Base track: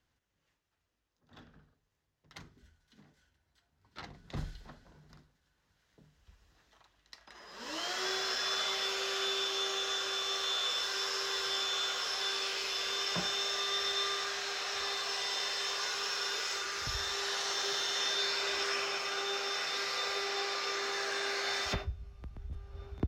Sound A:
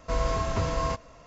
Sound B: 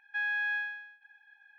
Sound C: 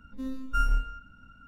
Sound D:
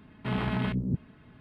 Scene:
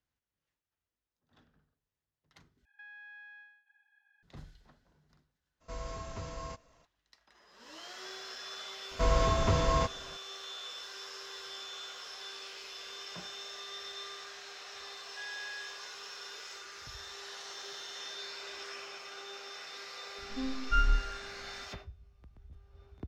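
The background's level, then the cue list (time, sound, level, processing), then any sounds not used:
base track -10.5 dB
2.65 replace with B -10.5 dB + compressor, threshold -39 dBFS
5.6 add A -14.5 dB, fades 0.02 s + high shelf 4800 Hz +7 dB
8.91 add A
15.02 add B -12.5 dB
20.18 add C -1.5 dB + synth low-pass 3900 Hz, resonance Q 3.1
not used: D

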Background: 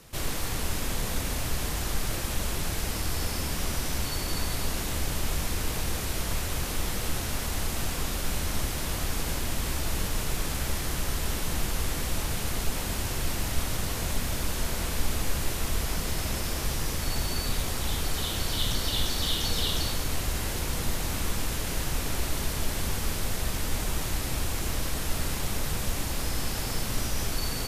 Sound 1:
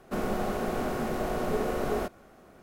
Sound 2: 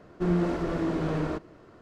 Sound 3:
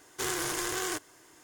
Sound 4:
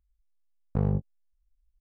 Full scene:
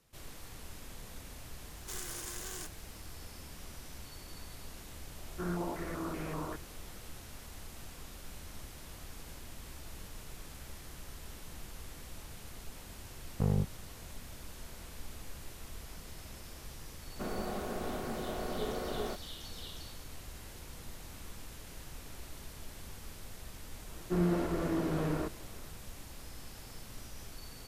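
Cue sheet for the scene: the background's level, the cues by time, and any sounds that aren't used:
background -18 dB
1.69 add 3 -16 dB + high shelf 4000 Hz +10 dB
5.18 add 2 -12 dB + stepped low-pass 5.2 Hz 780–2400 Hz
12.65 add 4 -4 dB
17.08 add 1 -8 dB
23.9 add 2 -4.5 dB

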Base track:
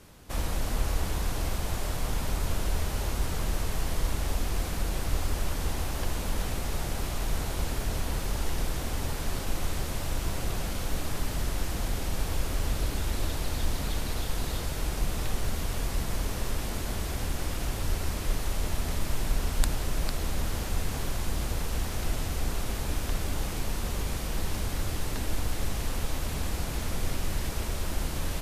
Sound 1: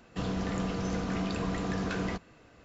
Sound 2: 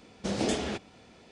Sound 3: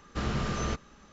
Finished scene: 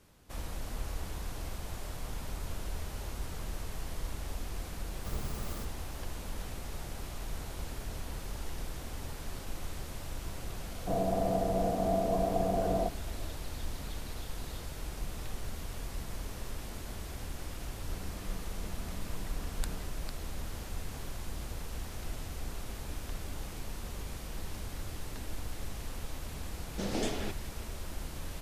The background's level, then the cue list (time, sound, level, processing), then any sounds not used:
base track -9.5 dB
4.89 add 3 -12 dB + clock jitter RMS 0.13 ms
10.71 add 1 -3.5 dB + synth low-pass 680 Hz, resonance Q 8.2
17.72 add 1 -17.5 dB
26.54 add 2 -5 dB

